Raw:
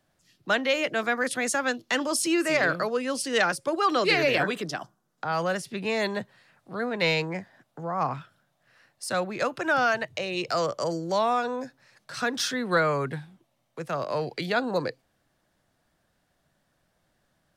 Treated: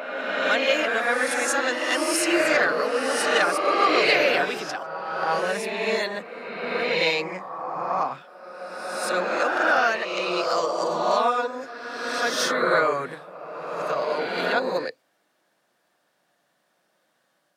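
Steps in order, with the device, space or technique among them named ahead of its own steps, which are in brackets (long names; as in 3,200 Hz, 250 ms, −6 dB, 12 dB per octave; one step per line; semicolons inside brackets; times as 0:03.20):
ghost voice (reversed playback; convolution reverb RT60 2.4 s, pre-delay 3 ms, DRR −2.5 dB; reversed playback; high-pass filter 340 Hz 12 dB per octave)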